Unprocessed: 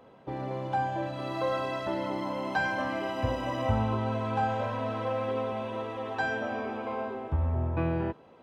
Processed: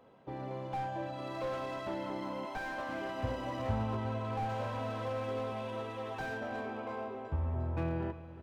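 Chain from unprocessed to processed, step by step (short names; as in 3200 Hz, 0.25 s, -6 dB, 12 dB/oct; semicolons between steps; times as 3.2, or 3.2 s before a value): 2.45–2.89 HPF 400 Hz 12 dB/oct; 4.49–6.25 high shelf 3500 Hz +9 dB; feedback echo 0.354 s, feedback 54%, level -16 dB; slew limiter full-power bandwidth 32 Hz; gain -6 dB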